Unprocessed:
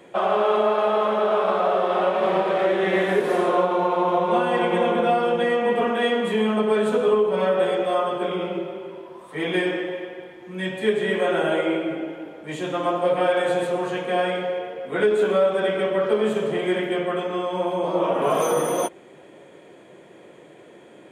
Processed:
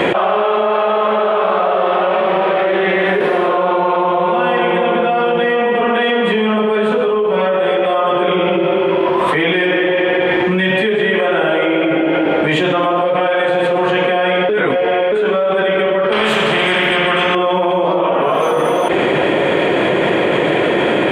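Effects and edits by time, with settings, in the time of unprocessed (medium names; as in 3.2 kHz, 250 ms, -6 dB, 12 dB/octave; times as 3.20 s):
14.49–15.12 s: reverse
16.12–17.35 s: spectrum-flattening compressor 2:1
whole clip: FFT filter 290 Hz 0 dB, 2.9 kHz +5 dB, 6.3 kHz -12 dB; level flattener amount 100%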